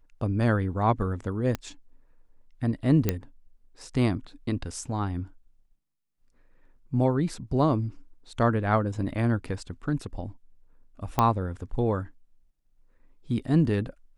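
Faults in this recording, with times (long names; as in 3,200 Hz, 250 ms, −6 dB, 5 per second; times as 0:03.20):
0:01.55: click −15 dBFS
0:03.09: click −9 dBFS
0:11.19: click −9 dBFS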